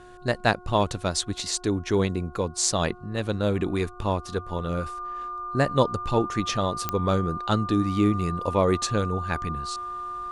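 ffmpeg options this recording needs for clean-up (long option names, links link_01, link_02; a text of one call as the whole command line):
ffmpeg -i in.wav -af "adeclick=threshold=4,bandreject=frequency=360.6:width_type=h:width=4,bandreject=frequency=721.2:width_type=h:width=4,bandreject=frequency=1081.8:width_type=h:width=4,bandreject=frequency=1442.4:width_type=h:width=4,bandreject=frequency=1200:width=30" out.wav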